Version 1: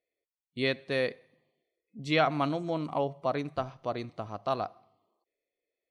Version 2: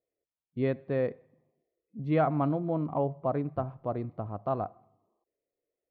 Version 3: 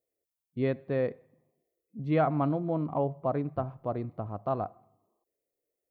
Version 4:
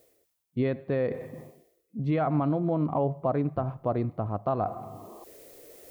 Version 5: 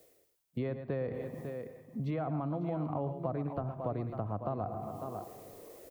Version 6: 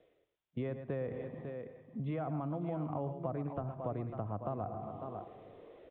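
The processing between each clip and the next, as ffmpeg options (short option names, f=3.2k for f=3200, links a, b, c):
-af "lowpass=1.1k,equalizer=f=91:w=0.46:g=6.5"
-af "crystalizer=i=1:c=0"
-af "areverse,acompressor=mode=upward:threshold=-32dB:ratio=2.5,areverse,alimiter=limit=-23.5dB:level=0:latency=1:release=86,volume=6dB"
-filter_complex "[0:a]asplit=2[a][b];[b]aecho=0:1:112|548:0.237|0.224[c];[a][c]amix=inputs=2:normalize=0,acrossover=split=150|590|1300[d][e][f][g];[d]acompressor=threshold=-40dB:ratio=4[h];[e]acompressor=threshold=-39dB:ratio=4[i];[f]acompressor=threshold=-41dB:ratio=4[j];[g]acompressor=threshold=-56dB:ratio=4[k];[h][i][j][k]amix=inputs=4:normalize=0"
-af "aresample=8000,aresample=44100,volume=-2.5dB"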